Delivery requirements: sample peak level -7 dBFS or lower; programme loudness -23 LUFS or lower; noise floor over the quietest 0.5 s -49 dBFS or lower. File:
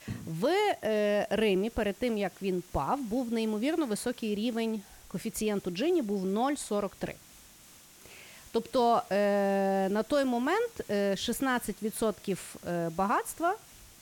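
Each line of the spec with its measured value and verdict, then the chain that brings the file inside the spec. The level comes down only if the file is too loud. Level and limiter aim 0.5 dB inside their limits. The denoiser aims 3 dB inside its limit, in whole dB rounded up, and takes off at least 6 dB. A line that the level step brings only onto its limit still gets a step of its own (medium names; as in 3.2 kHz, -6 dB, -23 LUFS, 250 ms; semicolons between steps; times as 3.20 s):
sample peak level -16.0 dBFS: pass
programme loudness -30.5 LUFS: pass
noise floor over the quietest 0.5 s -55 dBFS: pass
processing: none needed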